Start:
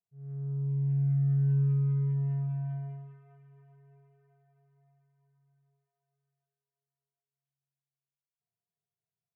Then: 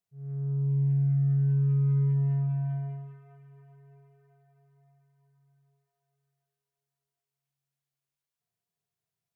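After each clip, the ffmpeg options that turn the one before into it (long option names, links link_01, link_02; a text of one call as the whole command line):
ffmpeg -i in.wav -af "alimiter=level_in=1dB:limit=-24dB:level=0:latency=1,volume=-1dB,volume=4dB" out.wav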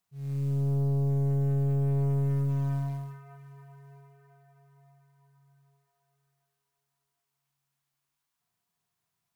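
ffmpeg -i in.wav -af "equalizer=frequency=125:width_type=o:width=1:gain=-4,equalizer=frequency=250:width_type=o:width=1:gain=4,equalizer=frequency=500:width_type=o:width=1:gain=-8,equalizer=frequency=1000:width_type=o:width=1:gain=7,acrusher=bits=7:mode=log:mix=0:aa=0.000001,aeval=exprs='(tanh(39.8*val(0)+0.35)-tanh(0.35))/39.8':channel_layout=same,volume=7.5dB" out.wav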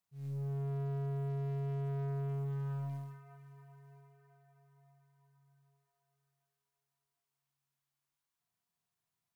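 ffmpeg -i in.wav -af "volume=29dB,asoftclip=hard,volume=-29dB,volume=-6.5dB" out.wav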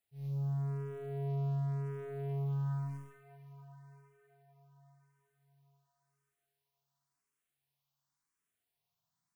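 ffmpeg -i in.wav -filter_complex "[0:a]asplit=2[link_01][link_02];[link_02]afreqshift=0.93[link_03];[link_01][link_03]amix=inputs=2:normalize=1,volume=3.5dB" out.wav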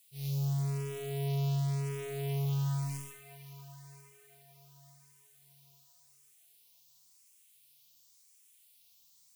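ffmpeg -i in.wav -af "aexciter=amount=4:drive=9.3:freq=2300,volume=3dB" out.wav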